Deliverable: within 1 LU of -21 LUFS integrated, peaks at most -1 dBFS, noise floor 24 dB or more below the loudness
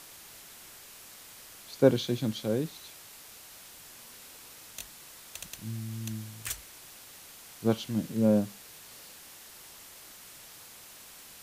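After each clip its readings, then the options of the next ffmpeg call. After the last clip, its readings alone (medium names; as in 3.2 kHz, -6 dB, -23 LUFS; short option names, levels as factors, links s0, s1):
noise floor -50 dBFS; noise floor target -55 dBFS; loudness -31.0 LUFS; peak level -8.5 dBFS; loudness target -21.0 LUFS
-> -af "afftdn=nr=6:nf=-50"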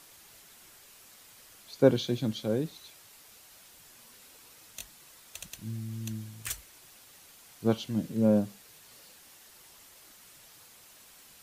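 noise floor -55 dBFS; loudness -30.5 LUFS; peak level -8.5 dBFS; loudness target -21.0 LUFS
-> -af "volume=2.99,alimiter=limit=0.891:level=0:latency=1"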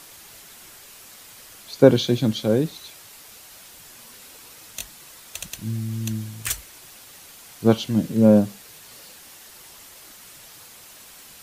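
loudness -21.0 LUFS; peak level -1.0 dBFS; noise floor -46 dBFS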